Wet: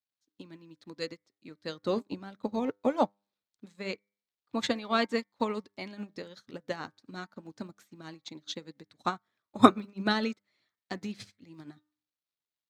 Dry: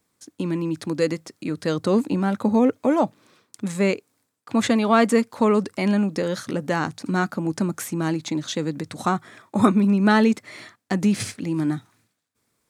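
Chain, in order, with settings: crackle 560 per s -47 dBFS; fifteen-band graphic EQ 100 Hz +6 dB, 4 kHz +8 dB, 10 kHz -10 dB; harmonic-percussive split percussive +6 dB; bass shelf 140 Hz -4.5 dB; de-hum 100.7 Hz, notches 23; upward expansion 2.5:1, over -34 dBFS; trim -2.5 dB

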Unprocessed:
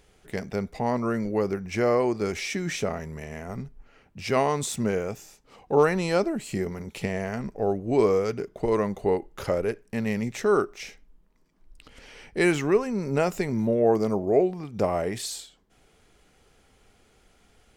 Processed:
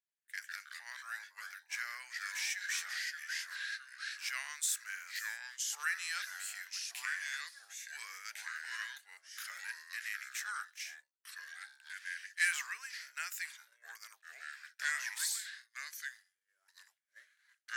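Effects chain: ever faster or slower copies 91 ms, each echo -3 st, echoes 2; ladder high-pass 1.5 kHz, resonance 70%; differentiator; expander -58 dBFS; trim +10 dB

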